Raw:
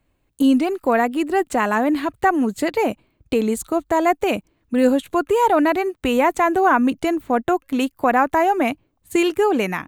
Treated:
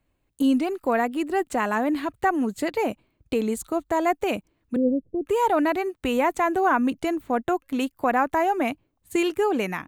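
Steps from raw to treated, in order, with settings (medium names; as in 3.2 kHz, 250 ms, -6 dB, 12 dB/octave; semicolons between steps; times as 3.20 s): 4.76–5.26 s: steep low-pass 520 Hz 36 dB/octave; trim -5 dB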